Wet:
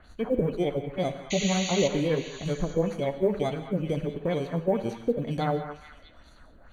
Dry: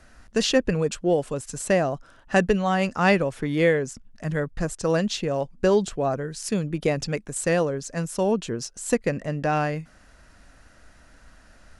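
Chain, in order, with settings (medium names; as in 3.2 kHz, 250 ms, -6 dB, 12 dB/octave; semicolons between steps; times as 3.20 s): bit-reversed sample order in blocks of 16 samples; de-esser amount 70%; peak limiter -17.5 dBFS, peak gain reduction 9 dB; granular stretch 0.57×, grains 112 ms; LFO low-pass sine 2.1 Hz 420–6200 Hz; painted sound noise, 1.30–1.88 s, 1.9–7.1 kHz -32 dBFS; short-mantissa float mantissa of 6-bit; Butterworth band-stop 5.2 kHz, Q 3.5; repeats whose band climbs or falls 215 ms, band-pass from 1.3 kHz, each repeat 0.7 oct, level -6.5 dB; gated-style reverb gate 210 ms flat, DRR 10 dB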